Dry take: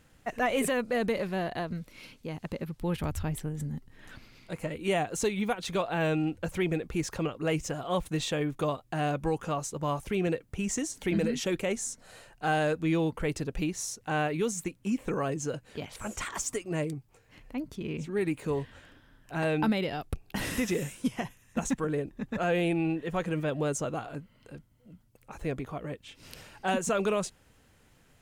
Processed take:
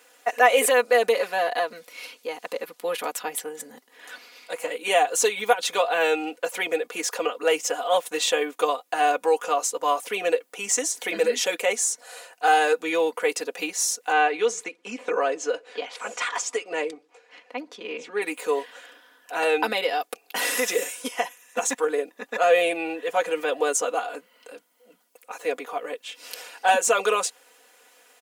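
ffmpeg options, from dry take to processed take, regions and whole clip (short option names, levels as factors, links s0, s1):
-filter_complex "[0:a]asettb=1/sr,asplit=3[s0][s1][s2];[s0]atrim=end=14.124[s3];[s1]atrim=start=14.12:end=18.22,asetpts=PTS-STARTPTS,afade=t=in:d=0.004:c=qsin,afade=t=out:st=4.096:d=0.004:c=qsin,highpass=120,lowpass=4700,asplit=2[s4][s5];[s5]adelay=63,lowpass=f=1000:p=1,volume=0.0631,asplit=2[s6][s7];[s7]adelay=63,lowpass=f=1000:p=1,volume=0.48,asplit=2[s8][s9];[s9]adelay=63,lowpass=f=1000:p=1,volume=0.48[s10];[s4][s6][s8][s10]amix=inputs=4:normalize=0,atrim=end_sample=180810[s11];[s2]atrim=start=18.216[s12];[s3][s11]acrossfade=d=0.004:c1=hsin:c2=qsin[s13];[s13][s12]acrossfade=d=0.004:c1=qsin:c2=hsin,highpass=f=430:w=0.5412,highpass=f=430:w=1.3066,highshelf=f=6600:g=4,aecho=1:1:4.1:0.87,volume=2.24"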